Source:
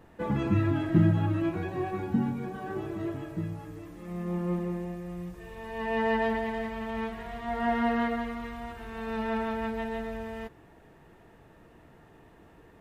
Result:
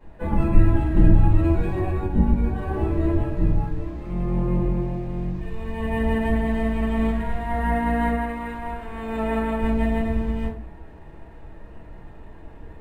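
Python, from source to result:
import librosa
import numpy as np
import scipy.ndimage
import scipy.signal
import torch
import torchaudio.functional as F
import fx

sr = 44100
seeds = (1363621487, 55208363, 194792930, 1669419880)

y = fx.octave_divider(x, sr, octaves=2, level_db=2.0)
y = fx.bass_treble(y, sr, bass_db=-9, treble_db=-6, at=(8.12, 9.6))
y = fx.rider(y, sr, range_db=3, speed_s=0.5)
y = fx.high_shelf(y, sr, hz=4800.0, db=7.5, at=(0.65, 1.79))
y = fx.room_shoebox(y, sr, seeds[0], volume_m3=160.0, walls='furnished', distance_m=5.0)
y = np.interp(np.arange(len(y)), np.arange(len(y))[::4], y[::4])
y = y * librosa.db_to_amplitude(-6.5)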